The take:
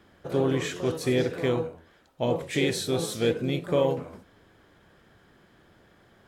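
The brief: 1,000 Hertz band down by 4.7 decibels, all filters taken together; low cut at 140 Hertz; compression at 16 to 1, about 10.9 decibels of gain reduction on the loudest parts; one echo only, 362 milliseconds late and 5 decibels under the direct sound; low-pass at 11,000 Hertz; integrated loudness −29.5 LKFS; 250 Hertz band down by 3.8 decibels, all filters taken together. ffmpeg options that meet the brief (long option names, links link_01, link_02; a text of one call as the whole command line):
ffmpeg -i in.wav -af "highpass=140,lowpass=11000,equalizer=frequency=250:width_type=o:gain=-4,equalizer=frequency=1000:width_type=o:gain=-6,acompressor=threshold=-32dB:ratio=16,aecho=1:1:362:0.562,volume=7.5dB" out.wav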